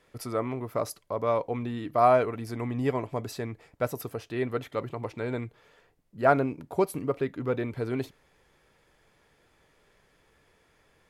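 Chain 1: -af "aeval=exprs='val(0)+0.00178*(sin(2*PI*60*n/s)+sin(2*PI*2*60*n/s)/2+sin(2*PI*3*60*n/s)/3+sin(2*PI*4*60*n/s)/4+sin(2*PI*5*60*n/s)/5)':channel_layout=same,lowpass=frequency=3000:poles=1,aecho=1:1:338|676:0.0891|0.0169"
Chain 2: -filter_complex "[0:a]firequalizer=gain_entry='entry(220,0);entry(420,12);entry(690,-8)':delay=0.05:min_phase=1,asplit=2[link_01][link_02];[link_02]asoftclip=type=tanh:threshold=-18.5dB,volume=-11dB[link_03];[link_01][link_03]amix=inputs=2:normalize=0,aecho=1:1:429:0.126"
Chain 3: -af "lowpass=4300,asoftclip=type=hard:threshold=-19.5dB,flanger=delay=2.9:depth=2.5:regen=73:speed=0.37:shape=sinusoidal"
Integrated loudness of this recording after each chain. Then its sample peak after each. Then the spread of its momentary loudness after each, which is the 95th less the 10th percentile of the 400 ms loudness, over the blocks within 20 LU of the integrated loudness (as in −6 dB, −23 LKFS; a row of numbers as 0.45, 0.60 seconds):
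−29.5, −24.0, −35.0 LKFS; −6.5, −5.5, −19.5 dBFS; 12, 10, 10 LU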